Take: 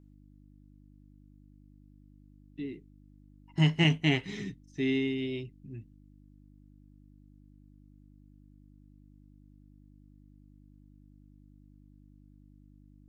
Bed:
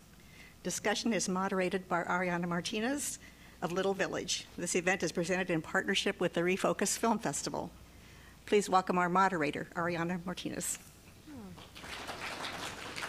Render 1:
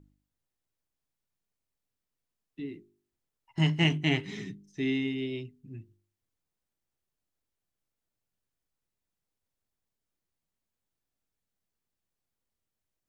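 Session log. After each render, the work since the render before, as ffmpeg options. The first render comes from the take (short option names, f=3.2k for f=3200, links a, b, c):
-af "bandreject=f=50:t=h:w=4,bandreject=f=100:t=h:w=4,bandreject=f=150:t=h:w=4,bandreject=f=200:t=h:w=4,bandreject=f=250:t=h:w=4,bandreject=f=300:t=h:w=4,bandreject=f=350:t=h:w=4,bandreject=f=400:t=h:w=4"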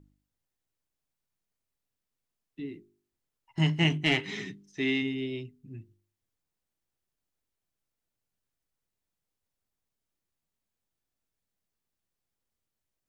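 -filter_complex "[0:a]asplit=3[a][b][c];[a]afade=t=out:st=4.04:d=0.02[d];[b]asplit=2[e][f];[f]highpass=f=720:p=1,volume=12dB,asoftclip=type=tanh:threshold=-12dB[g];[e][g]amix=inputs=2:normalize=0,lowpass=f=4.6k:p=1,volume=-6dB,afade=t=in:st=4.04:d=0.02,afade=t=out:st=5.01:d=0.02[h];[c]afade=t=in:st=5.01:d=0.02[i];[d][h][i]amix=inputs=3:normalize=0"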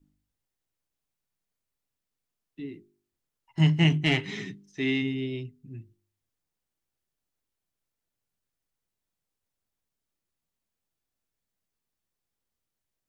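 -af "bandreject=f=50:t=h:w=6,bandreject=f=100:t=h:w=6,adynamicequalizer=threshold=0.00891:dfrequency=120:dqfactor=0.91:tfrequency=120:tqfactor=0.91:attack=5:release=100:ratio=0.375:range=3.5:mode=boostabove:tftype=bell"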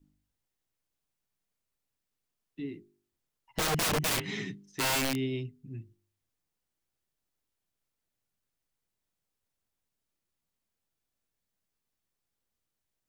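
-af "aeval=exprs='(mod(15.8*val(0)+1,2)-1)/15.8':c=same"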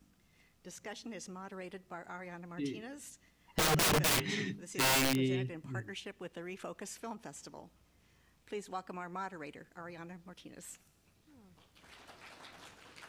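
-filter_complex "[1:a]volume=-13.5dB[a];[0:a][a]amix=inputs=2:normalize=0"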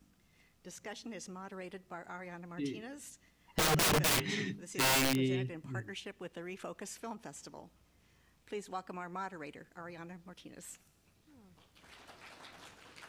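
-af anull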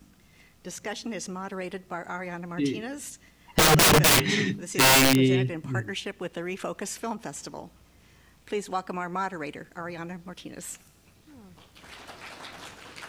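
-af "volume=11dB"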